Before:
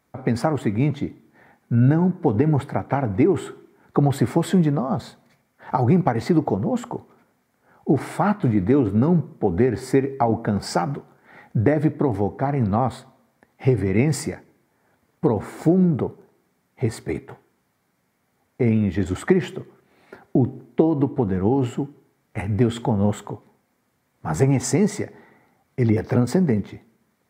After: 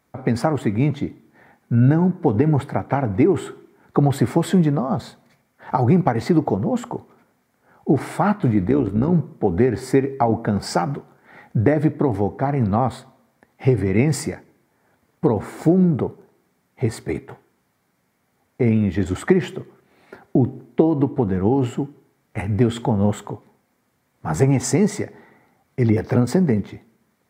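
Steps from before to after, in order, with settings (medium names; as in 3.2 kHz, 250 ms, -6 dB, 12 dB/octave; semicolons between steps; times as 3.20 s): 8.66–9.13 s: AM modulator 64 Hz, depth 40%; trim +1.5 dB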